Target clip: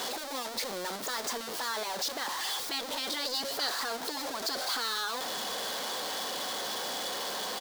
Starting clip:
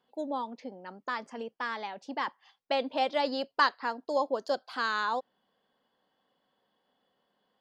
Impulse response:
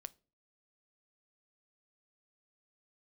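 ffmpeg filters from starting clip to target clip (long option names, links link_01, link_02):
-filter_complex "[0:a]aeval=exprs='val(0)+0.5*0.0376*sgn(val(0))':channel_layout=same,afftfilt=real='re*lt(hypot(re,im),0.251)':imag='im*lt(hypot(re,im),0.251)':win_size=1024:overlap=0.75,bass=frequency=250:gain=-14,treble=frequency=4000:gain=-11,asplit=2[link_01][link_02];[link_02]alimiter=level_in=3.5dB:limit=-24dB:level=0:latency=1:release=39,volume=-3.5dB,volume=1.5dB[link_03];[link_01][link_03]amix=inputs=2:normalize=0,aexciter=amount=8.8:drive=2.3:freq=3800,asplit=2[link_04][link_05];[link_05]asplit=3[link_06][link_07][link_08];[link_06]adelay=110,afreqshift=32,volume=-23dB[link_09];[link_07]adelay=220,afreqshift=64,volume=-29.7dB[link_10];[link_08]adelay=330,afreqshift=96,volume=-36.5dB[link_11];[link_09][link_10][link_11]amix=inputs=3:normalize=0[link_12];[link_04][link_12]amix=inputs=2:normalize=0,adynamicequalizer=threshold=0.0141:dfrequency=6000:dqfactor=0.7:tfrequency=6000:tqfactor=0.7:attack=5:release=100:ratio=0.375:range=3.5:mode=cutabove:tftype=highshelf,volume=-8dB"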